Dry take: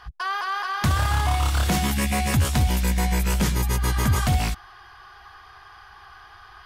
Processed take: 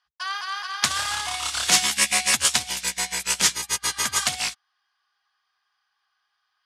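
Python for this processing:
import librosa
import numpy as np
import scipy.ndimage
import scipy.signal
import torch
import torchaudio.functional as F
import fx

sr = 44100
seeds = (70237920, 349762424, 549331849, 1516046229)

y = fx.weighting(x, sr, curve='ITU-R 468')
y = fx.upward_expand(y, sr, threshold_db=-41.0, expansion=2.5)
y = y * librosa.db_to_amplitude(4.0)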